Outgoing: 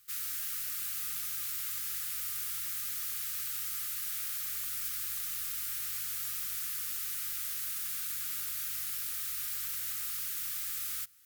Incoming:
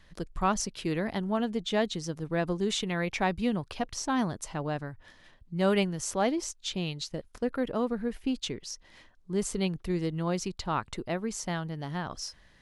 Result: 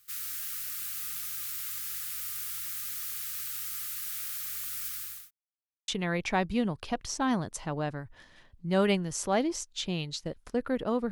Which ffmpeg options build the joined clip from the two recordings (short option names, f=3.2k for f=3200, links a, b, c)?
-filter_complex "[0:a]apad=whole_dur=11.11,atrim=end=11.11,asplit=2[a][b];[a]atrim=end=5.31,asetpts=PTS-STARTPTS,afade=t=out:st=4.81:d=0.5:c=qsin[c];[b]atrim=start=5.31:end=5.88,asetpts=PTS-STARTPTS,volume=0[d];[1:a]atrim=start=2.76:end=7.99,asetpts=PTS-STARTPTS,afade=t=in:d=0.004:c=hsin[e];[c][d][e]concat=n=3:v=0:a=1"